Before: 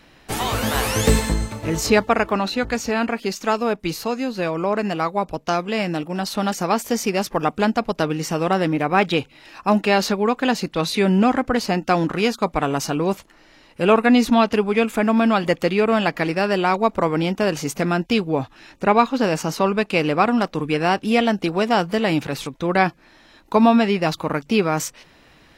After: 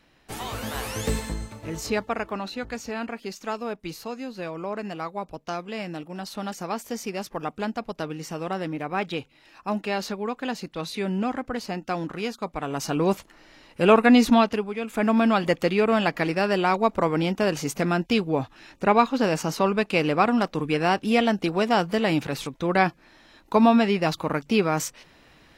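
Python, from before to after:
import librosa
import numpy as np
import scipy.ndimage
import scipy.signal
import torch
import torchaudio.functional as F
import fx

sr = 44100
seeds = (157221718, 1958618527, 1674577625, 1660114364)

y = fx.gain(x, sr, db=fx.line((12.61, -10.0), (13.03, -1.0), (14.34, -1.0), (14.79, -13.0), (15.04, -3.0)))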